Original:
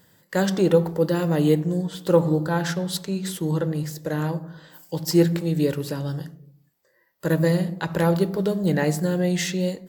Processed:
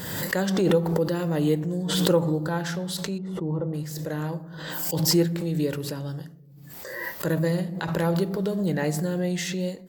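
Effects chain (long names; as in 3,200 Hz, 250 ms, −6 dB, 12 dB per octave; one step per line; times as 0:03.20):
0:03.18–0:03.74: Savitzky-Golay smoothing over 65 samples
background raised ahead of every attack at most 34 dB per second
level −4.5 dB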